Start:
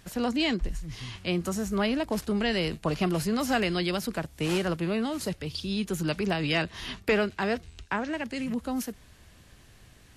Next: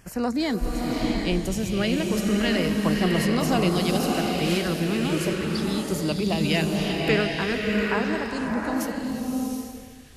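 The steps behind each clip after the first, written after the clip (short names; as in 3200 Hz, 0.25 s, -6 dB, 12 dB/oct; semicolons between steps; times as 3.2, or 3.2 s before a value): LFO notch saw down 0.39 Hz 540–3900 Hz; bloom reverb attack 0.74 s, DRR -0.5 dB; gain +2.5 dB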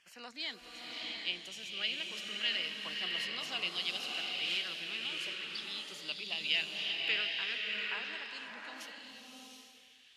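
band-pass 3100 Hz, Q 2.9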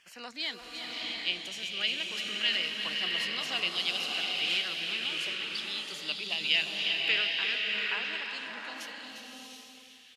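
echo 0.353 s -9.5 dB; gain +5 dB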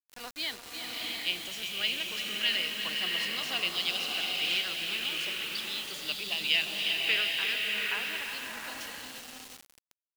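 bit-crush 7-bit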